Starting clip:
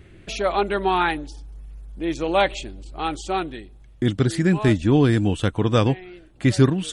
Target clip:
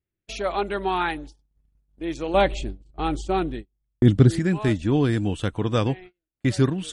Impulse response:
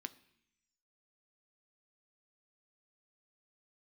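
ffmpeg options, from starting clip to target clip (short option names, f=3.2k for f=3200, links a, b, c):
-filter_complex "[0:a]agate=range=-36dB:threshold=-34dB:ratio=16:detection=peak,asettb=1/sr,asplit=3[a][b][c];[a]atrim=end=2.344[d];[b]atrim=start=2.34:end=4.39,asetpts=PTS-STARTPTS,afade=t=in:d=0.004:c=qsin,afade=t=out:st=2.046:d=0.004:c=qsin,lowshelf=f=470:g=11[e];[c]atrim=start=4.386[f];[d][e]acrossfade=d=0.004:c1=hsin:c2=qsin[g];[g][f]acrossfade=d=0.004:c1=qsin:c2=hsin,volume=-4dB"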